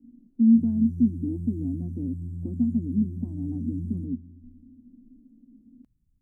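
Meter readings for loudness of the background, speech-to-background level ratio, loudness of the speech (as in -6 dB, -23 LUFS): -36.0 LUFS, 9.5 dB, -26.5 LUFS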